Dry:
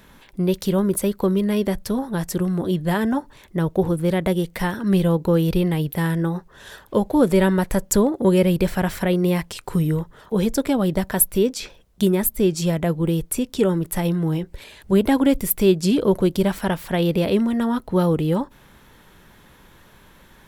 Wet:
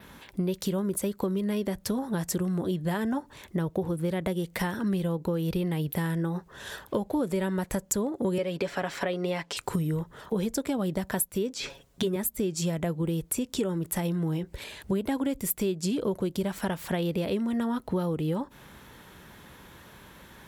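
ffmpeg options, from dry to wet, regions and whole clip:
-filter_complex "[0:a]asettb=1/sr,asplit=3[s0][s1][s2];[s0]atrim=end=8.384[s3];[s1]atrim=start=8.38:end=9.57,asetpts=PTS-STARTPTS,afade=t=in:d=0.004:c=qsin,afade=t=out:st=1.186:d=0.004:c=qsin,acrossover=split=240 6700:gain=0.141 1 0.141[s4][s5][s6];[s4][s5][s6]amix=inputs=3:normalize=0,aecho=1:1:7.1:0.45,atrim=end_sample=52479[s7];[s2]atrim=start=9.566[s8];[s3][s7]acrossfade=d=0.004:c1=hsin:c2=qsin[s9];[s9][s8]acrossfade=d=0.004:c1=qsin:c2=hsin,asettb=1/sr,asplit=3[s10][s11][s12];[s10]atrim=end=11.544[s13];[s11]atrim=start=11.54:end=12.16,asetpts=PTS-STARTPTS,afade=t=in:d=0.004:c=qsin,afade=t=out:st=0.616:d=0.004:c=qsin,acrossover=split=5100[s14][s15];[s15]acompressor=threshold=0.00562:ratio=4:attack=1:release=60[s16];[s14][s16]amix=inputs=2:normalize=0,aecho=1:1:7.3:0.84,atrim=end_sample=27342[s17];[s12]atrim=start=12.156[s18];[s13][s17]acrossfade=d=0.004:c1=hsin:c2=qsin[s19];[s19][s18]acrossfade=d=0.004:c1=qsin:c2=hsin,highpass=52,adynamicequalizer=threshold=0.00447:dfrequency=7200:dqfactor=2.6:tfrequency=7200:tqfactor=2.6:attack=5:release=100:ratio=0.375:range=2.5:mode=boostabove:tftype=bell,acompressor=threshold=0.0447:ratio=6,volume=1.12"

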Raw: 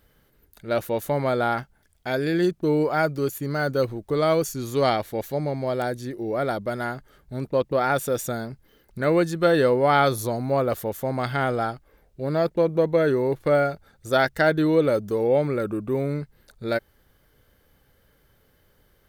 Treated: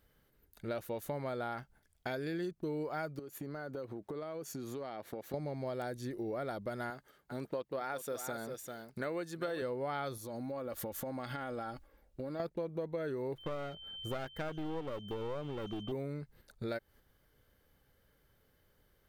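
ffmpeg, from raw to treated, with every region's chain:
-filter_complex "[0:a]asettb=1/sr,asplit=3[s0][s1][s2];[s0]atrim=end=3.194[s3];[s1]atrim=start=3.19:end=5.34,asetpts=PTS-STARTPTS,afade=t=in:d=0.004:c=qsin,afade=t=out:st=2.146:d=0.004:c=qsin,highpass=170,highshelf=f=2700:g=-9.5,acompressor=threshold=0.0178:ratio=8:attack=3.2:release=140:knee=1:detection=peak[s4];[s2]atrim=start=5.336[s5];[s3][s4]acrossfade=d=0.004:c1=hsin:c2=qsin[s6];[s6][s5]acrossfade=d=0.004:c1=qsin:c2=hsin,asettb=1/sr,asplit=3[s7][s8][s9];[s7]atrim=end=6.904[s10];[s8]atrim=start=6.9:end=9.62,asetpts=PTS-STARTPTS,afade=t=in:d=0.004:c=qsin,afade=t=out:st=2.716:d=0.004:c=qsin,highpass=f=320:p=1,aecho=1:1:395:0.224,atrim=end_sample=119952[s11];[s9]atrim=start=9.616[s12];[s10][s11]acrossfade=d=0.004:c1=hsin:c2=qsin[s13];[s13][s12]acrossfade=d=0.004:c1=qsin:c2=hsin,asettb=1/sr,asplit=3[s14][s15][s16];[s14]atrim=end=10.174[s17];[s15]atrim=start=10.17:end=12.4,asetpts=PTS-STARTPTS,afade=t=in:d=0.004:c=qsin,afade=t=out:st=2.226:d=0.004:c=qsin,aecho=1:1:3.6:0.44,atrim=end_sample=98343,acompressor=threshold=0.0251:ratio=6:attack=3.2:release=140:knee=1:detection=peak[s18];[s16]atrim=start=12.396[s19];[s17][s18]acrossfade=d=0.004:c1=hsin:c2=qsin[s20];[s20][s19]acrossfade=d=0.004:c1=qsin:c2=hsin,asettb=1/sr,asplit=3[s21][s22][s23];[s21]atrim=end=13.384[s24];[s22]atrim=start=13.38:end=15.92,asetpts=PTS-STARTPTS,afade=t=in:d=0.004:c=qsin,afade=t=out:st=2.536:d=0.004:c=qsin,equalizer=f=6200:w=0.48:g=-13,aeval=exprs='val(0)+0.00891*sin(2*PI*3100*n/s)':c=same,aeval=exprs='clip(val(0),-1,0.0282)':c=same[s25];[s23]atrim=start=15.916[s26];[s24][s25]acrossfade=d=0.004:c1=hsin:c2=qsin[s27];[s27][s26]acrossfade=d=0.004:c1=qsin:c2=hsin,agate=range=0.447:threshold=0.00316:ratio=16:detection=peak,acompressor=threshold=0.0178:ratio=5,volume=0.794"

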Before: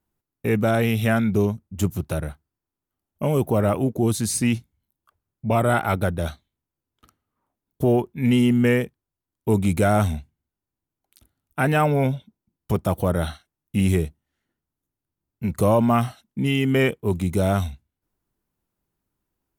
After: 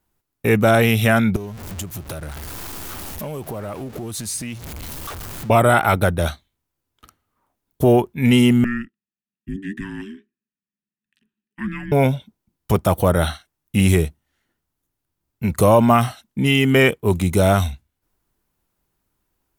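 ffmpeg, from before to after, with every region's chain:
-filter_complex "[0:a]asettb=1/sr,asplit=3[s0][s1][s2];[s0]atrim=end=1.364[s3];[s1]atrim=start=1.36:end=5.5,asetpts=PTS-STARTPTS,afade=t=in:d=0.004:c=qsin,afade=t=out:st=4.136:d=0.004:c=qsin,aeval=exprs='val(0)+0.5*0.0237*sgn(val(0))':c=same,acompressor=threshold=0.02:ratio=4:attack=3.2:release=140:knee=1:detection=peak[s4];[s2]atrim=start=5.496[s5];[s3][s4]acrossfade=d=0.004:c1=hsin:c2=qsin[s6];[s6][s5]acrossfade=d=0.004:c1=qsin:c2=hsin,asettb=1/sr,asplit=3[s7][s8][s9];[s7]atrim=end=8.644[s10];[s8]atrim=start=8.64:end=11.92,asetpts=PTS-STARTPTS,afade=t=in:d=0.004:c=qsin,afade=t=out:st=3.276:d=0.004:c=qsin,asplit=3[s11][s12][s13];[s11]bandpass=f=270:t=q:w=8,volume=1[s14];[s12]bandpass=f=2290:t=q:w=8,volume=0.501[s15];[s13]bandpass=f=3010:t=q:w=8,volume=0.355[s16];[s14][s15][s16]amix=inputs=3:normalize=0,equalizer=f=1300:w=6.9:g=-4.5,afreqshift=-480[s17];[s9]atrim=start=11.916[s18];[s10][s17]acrossfade=d=0.004:c1=hsin:c2=qsin[s19];[s19][s18]acrossfade=d=0.004:c1=qsin:c2=hsin,equalizer=f=190:t=o:w=3:g=-5,alimiter=level_in=3.35:limit=0.891:release=50:level=0:latency=1,volume=0.794"

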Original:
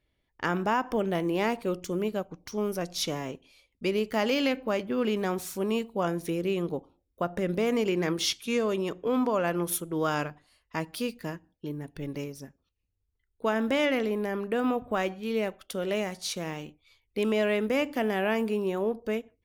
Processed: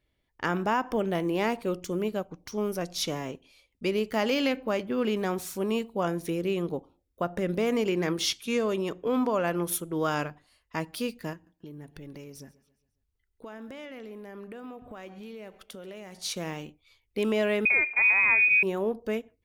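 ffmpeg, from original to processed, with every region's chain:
-filter_complex "[0:a]asettb=1/sr,asplit=3[s0][s1][s2];[s0]atrim=end=11.334[s3];[s1]atrim=start=11.33:end=16.19,asetpts=PTS-STARTPTS,afade=t=in:d=0.004:c=qsin,afade=t=out:st=4.856:d=0.004:c=qsin,acompressor=threshold=0.01:ratio=6:attack=3.2:release=140:knee=1:detection=peak,aecho=1:1:136|272|408|544:0.1|0.047|0.0221|0.0104,atrim=end_sample=214326[s4];[s2]atrim=start=16.186[s5];[s3][s4]acrossfade=d=0.004:c1=hsin:c2=qsin[s6];[s6][s5]acrossfade=d=0.004:c1=qsin:c2=hsin,asettb=1/sr,asplit=3[s7][s8][s9];[s7]atrim=end=17.654[s10];[s8]atrim=start=17.65:end=18.63,asetpts=PTS-STARTPTS,afade=t=in:d=0.004:c=qsin,afade=t=out:st=0.976:d=0.004:c=qsin,equalizer=f=190:w=1.7:g=12,lowpass=f=2300:t=q:w=0.5098,lowpass=f=2300:t=q:w=0.6013,lowpass=f=2300:t=q:w=0.9,lowpass=f=2300:t=q:w=2.563,afreqshift=-2700[s11];[s9]atrim=start=18.626[s12];[s10][s11]acrossfade=d=0.004:c1=hsin:c2=qsin[s13];[s13][s12]acrossfade=d=0.004:c1=qsin:c2=hsin"

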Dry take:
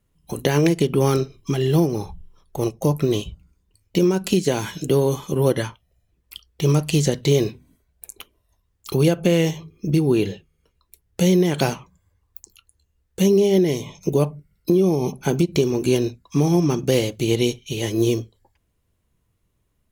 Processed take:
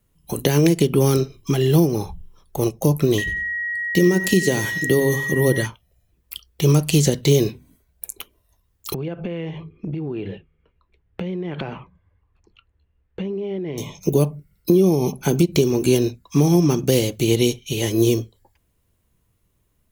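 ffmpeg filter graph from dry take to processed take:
-filter_complex "[0:a]asettb=1/sr,asplit=3[s0][s1][s2];[s0]atrim=end=3.184[s3];[s1]atrim=start=3.18:end=5.66,asetpts=PTS-STARTPTS,afade=t=in:d=0.004:c=qsin,afade=t=out:st=2.476:d=0.004:c=qsin,bandreject=f=69.27:t=h:w=4,bandreject=f=138.54:t=h:w=4,bandreject=f=207.81:t=h:w=4,aecho=1:1:91|182|273:0.178|0.048|0.013,atrim=end_sample=109368,aeval=exprs='val(0)+0.0708*sin(2*PI*1900*n/s)':c=same[s4];[s2]atrim=start=5.656[s5];[s3][s4]acrossfade=d=0.004:c1=hsin:c2=qsin[s6];[s6][s5]acrossfade=d=0.004:c1=qsin:c2=hsin,asettb=1/sr,asplit=3[s7][s8][s9];[s7]atrim=end=8.944[s10];[s8]atrim=start=8.94:end=13.78,asetpts=PTS-STARTPTS,afade=t=in:d=0.004:c=qsin,afade=t=out:st=4.836:d=0.004:c=qsin,lowpass=f=2800:w=0.5412,lowpass=f=2800:w=1.3066,acompressor=threshold=0.0501:ratio=10:attack=3.2:release=140:knee=1:detection=peak[s11];[s9]atrim=start=13.776[s12];[s10][s11]acrossfade=d=0.004:c1=hsin:c2=qsin[s13];[s13][s12]acrossfade=d=0.004:c1=qsin:c2=hsin,highshelf=f=12000:g=9.5,acrossover=split=470|3000[s14][s15][s16];[s15]acompressor=threshold=0.0398:ratio=6[s17];[s14][s17][s16]amix=inputs=3:normalize=0,volume=1.33"

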